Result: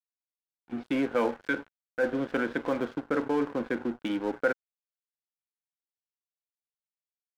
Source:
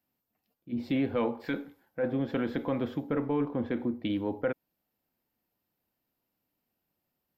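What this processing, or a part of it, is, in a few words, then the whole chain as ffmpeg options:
pocket radio on a weak battery: -af "highpass=270,lowpass=3200,aeval=exprs='sgn(val(0))*max(abs(val(0))-0.00562,0)':c=same,equalizer=f=1500:t=o:w=0.24:g=8.5,volume=1.68"

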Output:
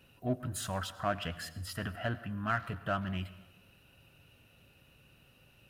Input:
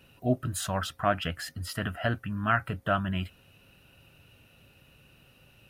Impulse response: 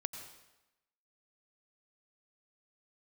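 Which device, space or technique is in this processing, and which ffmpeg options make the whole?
saturated reverb return: -filter_complex "[0:a]asplit=2[s0][s1];[1:a]atrim=start_sample=2205[s2];[s1][s2]afir=irnorm=-1:irlink=0,asoftclip=type=tanh:threshold=0.0251,volume=0.668[s3];[s0][s3]amix=inputs=2:normalize=0,volume=0.398"

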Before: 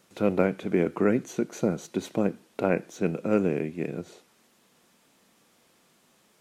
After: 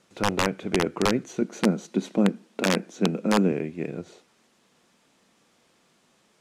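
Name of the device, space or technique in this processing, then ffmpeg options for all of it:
overflowing digital effects unit: -filter_complex "[0:a]aeval=exprs='(mod(4.22*val(0)+1,2)-1)/4.22':c=same,lowpass=8500,asettb=1/sr,asplit=3[s0][s1][s2];[s0]atrim=end=1.414[s3];[s1]atrim=start=1.41:end=3.52,asetpts=PTS-STARTPTS,afade=t=in:d=0.004:c=qsin,afade=t=out:st=2.106:d=0.004:c=qsin,lowshelf=f=140:t=q:w=3:g=-11.5[s4];[s2]atrim=start=3.516[s5];[s3][s4]acrossfade=d=0.004:c1=hsin:c2=qsin[s6];[s6][s5]acrossfade=d=0.004:c1=qsin:c2=hsin"

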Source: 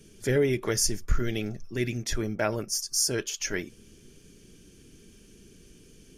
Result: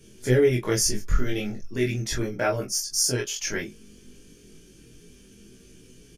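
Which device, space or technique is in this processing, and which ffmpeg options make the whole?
double-tracked vocal: -filter_complex "[0:a]asplit=2[s0][s1];[s1]adelay=24,volume=0.75[s2];[s0][s2]amix=inputs=2:normalize=0,flanger=delay=15.5:depth=4.7:speed=0.36,volume=1.5"

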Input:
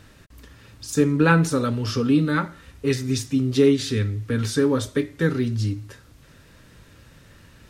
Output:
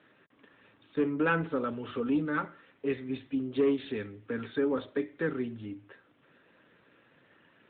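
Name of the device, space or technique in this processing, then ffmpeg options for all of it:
telephone: -af "highpass=280,lowpass=3400,asoftclip=type=tanh:threshold=0.251,volume=0.531" -ar 8000 -c:a libopencore_amrnb -b:a 12200

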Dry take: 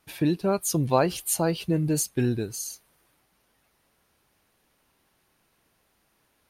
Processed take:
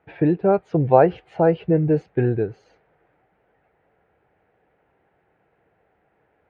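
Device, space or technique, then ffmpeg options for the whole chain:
bass cabinet: -af "highpass=64,equalizer=f=240:t=q:w=4:g=-7,equalizer=f=460:t=q:w=4:g=7,equalizer=f=750:t=q:w=4:g=6,equalizer=f=1100:t=q:w=4:g=-9,lowpass=f=2000:w=0.5412,lowpass=f=2000:w=1.3066,volume=1.88"

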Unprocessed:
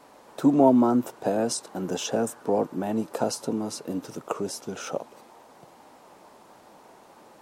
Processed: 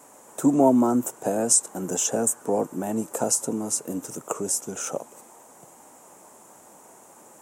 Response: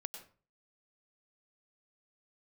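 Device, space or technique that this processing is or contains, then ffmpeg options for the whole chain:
budget condenser microphone: -af "highpass=72,highshelf=f=5700:t=q:w=3:g=9.5"

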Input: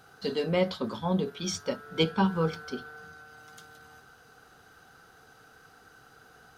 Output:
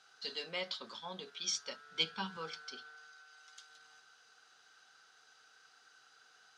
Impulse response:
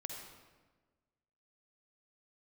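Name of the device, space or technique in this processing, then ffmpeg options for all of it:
piezo pickup straight into a mixer: -filter_complex "[0:a]lowpass=6200,aderivative,asettb=1/sr,asplit=3[s0][s1][s2];[s0]atrim=end=1.624[s3];[s1]atrim=start=1.62:end=2.37,asetpts=PTS-STARTPTS,afade=t=in:d=0.004:c=qsin,afade=t=out:st=0.746:d=0.004:c=qsin,asubboost=boost=11:cutoff=240[s4];[s2]atrim=start=2.366[s5];[s3][s4]acrossfade=d=0.004:c1=hsin:c2=qsin[s6];[s6][s5]acrossfade=d=0.004:c1=qsin:c2=hsin,lowpass=6300,asettb=1/sr,asplit=3[s7][s8][s9];[s7]atrim=end=2.954[s10];[s8]atrim=start=2.95:end=3.7,asetpts=PTS-STARTPTS,afade=t=in:d=0.004:c=qsin,afade=t=out:st=0.746:d=0.004:c=qsin,lowshelf=f=300:g=-11.5[s11];[s9]atrim=start=3.696[s12];[s10][s11]acrossfade=d=0.004:c1=hsin:c2=qsin[s13];[s13][s12]acrossfade=d=0.004:c1=qsin:c2=hsin,volume=1.88"

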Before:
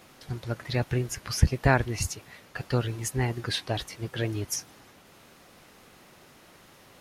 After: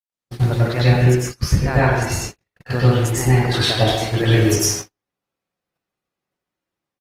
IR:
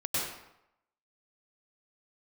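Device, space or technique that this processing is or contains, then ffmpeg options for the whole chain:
speakerphone in a meeting room: -filter_complex "[1:a]atrim=start_sample=2205[s0];[0:a][s0]afir=irnorm=-1:irlink=0,asplit=2[s1][s2];[s2]adelay=130,highpass=300,lowpass=3400,asoftclip=type=hard:threshold=0.282,volume=0.355[s3];[s1][s3]amix=inputs=2:normalize=0,dynaudnorm=f=120:g=5:m=6.68,agate=range=0.00251:threshold=0.0794:ratio=16:detection=peak,volume=0.75" -ar 48000 -c:a libopus -b:a 24k

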